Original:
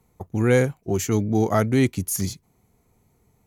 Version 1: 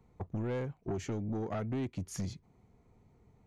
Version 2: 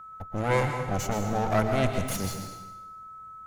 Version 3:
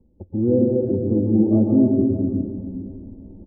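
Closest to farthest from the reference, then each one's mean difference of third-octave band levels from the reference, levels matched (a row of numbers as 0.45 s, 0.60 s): 1, 2, 3; 6.0 dB, 10.5 dB, 15.0 dB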